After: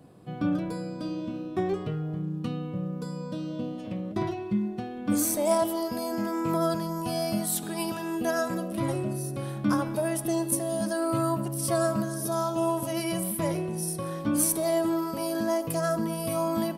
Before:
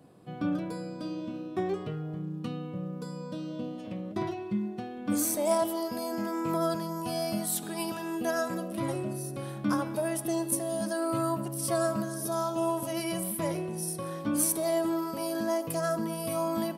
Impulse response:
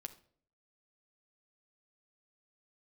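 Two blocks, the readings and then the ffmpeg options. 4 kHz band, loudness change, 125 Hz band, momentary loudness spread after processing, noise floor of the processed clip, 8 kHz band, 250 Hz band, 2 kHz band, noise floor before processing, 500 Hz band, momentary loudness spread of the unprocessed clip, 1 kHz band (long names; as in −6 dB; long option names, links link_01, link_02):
+2.0 dB, +2.5 dB, +4.5 dB, 8 LU, −37 dBFS, +2.0 dB, +3.0 dB, +2.0 dB, −40 dBFS, +2.5 dB, 9 LU, +2.0 dB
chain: -af "lowshelf=frequency=98:gain=9,volume=2dB"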